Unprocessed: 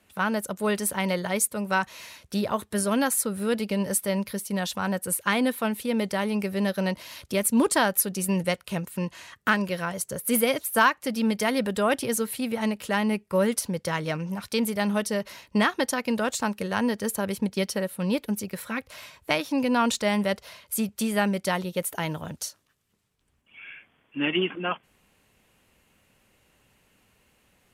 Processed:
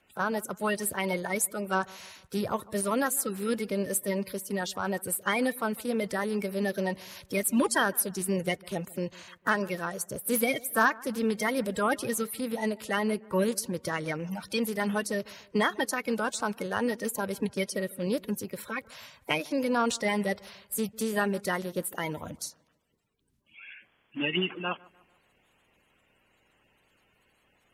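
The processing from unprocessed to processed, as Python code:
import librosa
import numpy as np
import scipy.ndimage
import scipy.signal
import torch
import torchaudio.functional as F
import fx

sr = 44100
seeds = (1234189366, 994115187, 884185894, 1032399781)

y = fx.spec_quant(x, sr, step_db=30)
y = fx.echo_wet_lowpass(y, sr, ms=149, feedback_pct=44, hz=1800.0, wet_db=-23.0)
y = F.gain(torch.from_numpy(y), -3.0).numpy()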